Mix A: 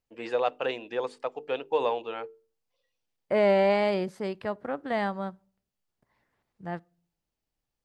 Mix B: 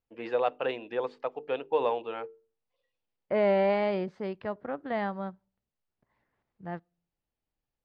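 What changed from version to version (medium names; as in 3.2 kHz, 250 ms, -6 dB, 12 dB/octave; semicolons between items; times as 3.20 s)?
second voice: send -9.0 dB; master: add distance through air 200 m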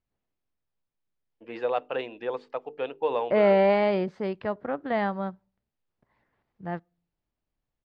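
first voice: entry +1.30 s; second voice +4.5 dB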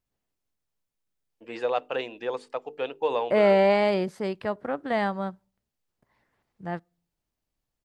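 master: remove distance through air 200 m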